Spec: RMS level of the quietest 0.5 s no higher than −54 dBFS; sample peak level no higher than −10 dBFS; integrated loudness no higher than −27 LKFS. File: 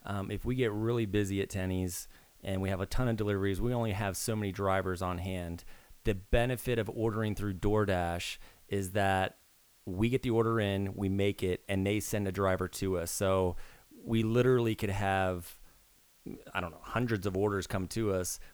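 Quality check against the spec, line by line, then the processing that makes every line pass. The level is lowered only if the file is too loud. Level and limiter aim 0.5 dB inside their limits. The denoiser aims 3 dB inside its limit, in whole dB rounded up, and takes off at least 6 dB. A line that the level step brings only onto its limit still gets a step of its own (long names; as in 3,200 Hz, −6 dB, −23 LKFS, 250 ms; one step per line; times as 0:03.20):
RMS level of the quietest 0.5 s −64 dBFS: in spec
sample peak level −14.0 dBFS: in spec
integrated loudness −32.5 LKFS: in spec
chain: no processing needed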